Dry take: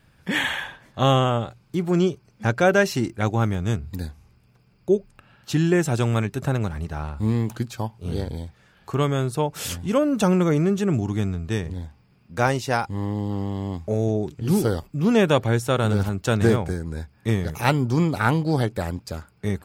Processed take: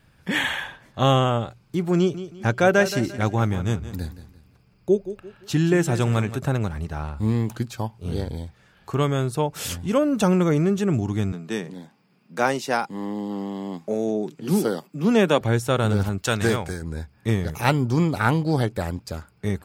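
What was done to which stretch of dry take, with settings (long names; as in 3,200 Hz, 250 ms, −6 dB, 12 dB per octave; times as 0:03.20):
0:01.97–0:06.37: repeating echo 173 ms, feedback 34%, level −13 dB
0:11.32–0:15.41: Butterworth high-pass 160 Hz
0:16.18–0:16.82: tilt shelving filter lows −5 dB, about 880 Hz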